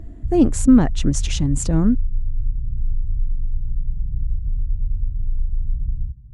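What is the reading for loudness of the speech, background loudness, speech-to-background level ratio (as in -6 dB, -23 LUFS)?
-19.0 LUFS, -28.0 LUFS, 9.0 dB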